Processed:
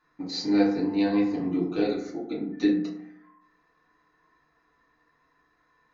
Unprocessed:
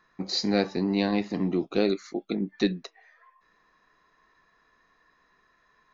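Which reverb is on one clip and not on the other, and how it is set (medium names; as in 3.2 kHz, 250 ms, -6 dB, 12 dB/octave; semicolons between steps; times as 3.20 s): FDN reverb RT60 0.73 s, low-frequency decay 1.25×, high-frequency decay 0.4×, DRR -6.5 dB; trim -9.5 dB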